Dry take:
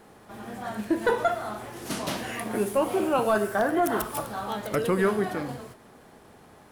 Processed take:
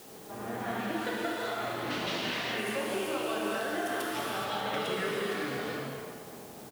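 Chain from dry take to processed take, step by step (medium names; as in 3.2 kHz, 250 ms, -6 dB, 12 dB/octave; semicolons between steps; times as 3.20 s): level-controlled noise filter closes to 650 Hz, open at -22.5 dBFS; frequency weighting D; compression 10:1, threshold -37 dBFS, peak gain reduction 20 dB; gated-style reverb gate 450 ms flat, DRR -5 dB; added noise white -54 dBFS; speakerphone echo 390 ms, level -12 dB; endings held to a fixed fall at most 260 dB/s; trim +1 dB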